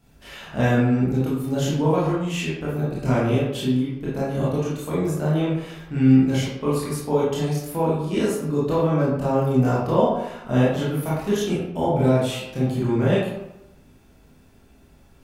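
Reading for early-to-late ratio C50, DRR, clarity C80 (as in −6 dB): −0.5 dB, −8.5 dB, 3.5 dB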